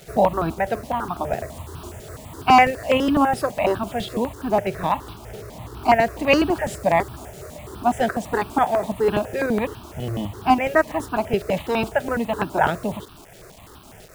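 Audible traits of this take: tremolo saw up 3.7 Hz, depth 40%; a quantiser's noise floor 8-bit, dither none; notches that jump at a steady rate 12 Hz 280–2000 Hz

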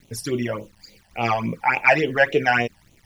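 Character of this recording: a quantiser's noise floor 10-bit, dither none; phasing stages 12, 3.5 Hz, lowest notch 370–1700 Hz

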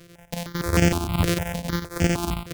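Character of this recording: a buzz of ramps at a fixed pitch in blocks of 256 samples; chopped level 11 Hz, depth 60%, duty 75%; notches that jump at a steady rate 6.5 Hz 230–3900 Hz

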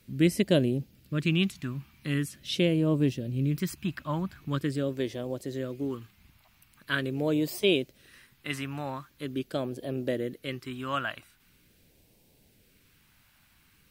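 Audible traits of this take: phasing stages 2, 0.43 Hz, lowest notch 450–1300 Hz

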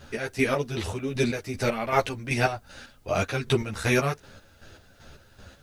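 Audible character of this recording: chopped level 2.6 Hz, depth 60%, duty 40%; a quantiser's noise floor 12-bit, dither triangular; a shimmering, thickened sound

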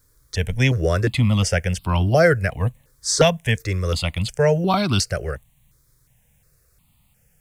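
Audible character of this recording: a quantiser's noise floor 12-bit, dither none; notches that jump at a steady rate 2.8 Hz 750–1800 Hz

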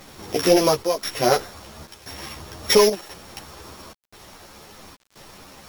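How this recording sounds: a buzz of ramps at a fixed pitch in blocks of 8 samples; chopped level 0.97 Hz, depth 65%, duty 80%; a quantiser's noise floor 8-bit, dither none; a shimmering, thickened sound

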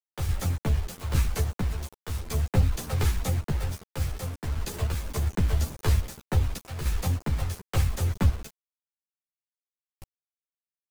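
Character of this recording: random-step tremolo, depth 75%; a quantiser's noise floor 8-bit, dither none; a shimmering, thickened sound

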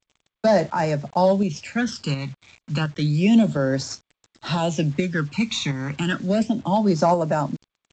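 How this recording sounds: phasing stages 12, 0.31 Hz, lowest notch 510–3200 Hz; a quantiser's noise floor 8-bit, dither none; tremolo saw up 1.4 Hz, depth 40%; G.722

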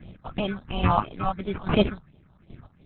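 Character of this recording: aliases and images of a low sample rate 1900 Hz, jitter 0%; phasing stages 4, 2.9 Hz, lowest notch 360–1500 Hz; chopped level 1.2 Hz, depth 65%, duty 20%; Opus

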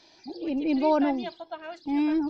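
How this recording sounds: noise floor -58 dBFS; spectral tilt -3.0 dB/oct

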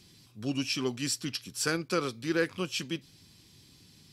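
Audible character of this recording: noise floor -59 dBFS; spectral tilt -3.5 dB/oct

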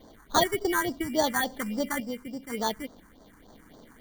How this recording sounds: random-step tremolo 2 Hz; aliases and images of a low sample rate 2600 Hz, jitter 0%; phasing stages 4, 3.5 Hz, lowest notch 560–2500 Hz

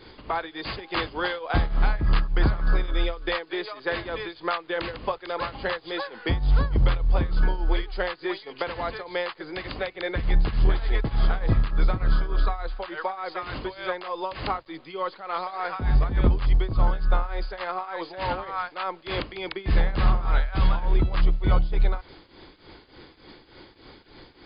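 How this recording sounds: tremolo triangle 3.4 Hz, depth 85%; a quantiser's noise floor 10-bit, dither none; MP2

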